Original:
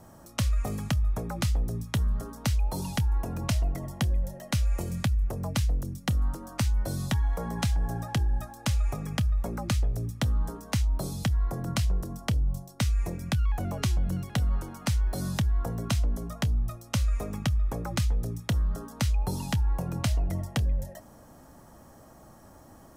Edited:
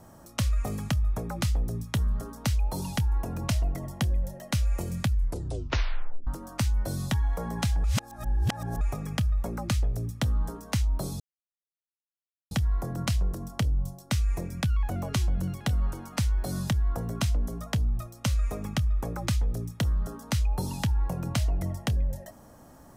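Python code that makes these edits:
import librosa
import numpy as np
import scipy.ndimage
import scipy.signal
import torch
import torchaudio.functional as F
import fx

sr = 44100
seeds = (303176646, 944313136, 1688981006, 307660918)

y = fx.edit(x, sr, fx.tape_stop(start_s=5.1, length_s=1.17),
    fx.reverse_span(start_s=7.84, length_s=0.97),
    fx.insert_silence(at_s=11.2, length_s=1.31), tone=tone)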